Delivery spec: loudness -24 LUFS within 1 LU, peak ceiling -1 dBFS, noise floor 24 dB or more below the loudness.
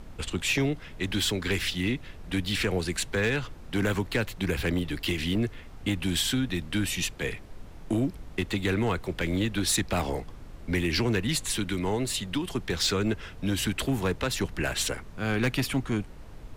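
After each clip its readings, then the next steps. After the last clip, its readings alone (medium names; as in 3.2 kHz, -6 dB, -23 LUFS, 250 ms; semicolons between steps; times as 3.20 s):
clipped samples 0.7%; clipping level -19.0 dBFS; noise floor -45 dBFS; noise floor target -53 dBFS; loudness -28.5 LUFS; peak level -19.0 dBFS; loudness target -24.0 LUFS
-> clip repair -19 dBFS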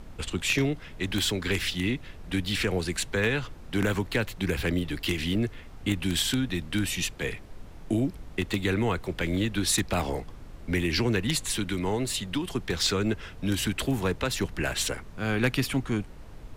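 clipped samples 0.0%; noise floor -45 dBFS; noise floor target -53 dBFS
-> noise print and reduce 8 dB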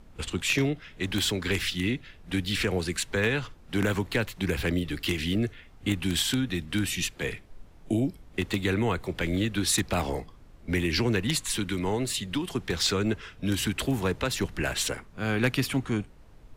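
noise floor -52 dBFS; noise floor target -53 dBFS
-> noise print and reduce 6 dB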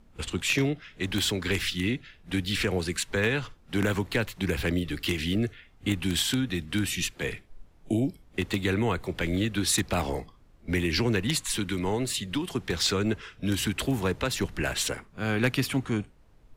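noise floor -57 dBFS; loudness -28.5 LUFS; peak level -10.0 dBFS; loudness target -24.0 LUFS
-> trim +4.5 dB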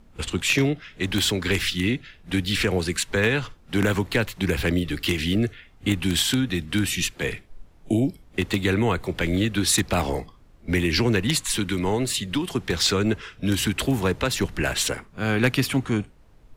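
loudness -24.0 LUFS; peak level -5.5 dBFS; noise floor -52 dBFS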